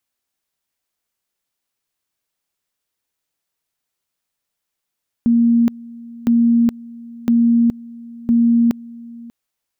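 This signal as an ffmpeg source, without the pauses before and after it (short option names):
-f lavfi -i "aevalsrc='pow(10,(-10-22*gte(mod(t,1.01),0.42))/20)*sin(2*PI*234*t)':d=4.04:s=44100"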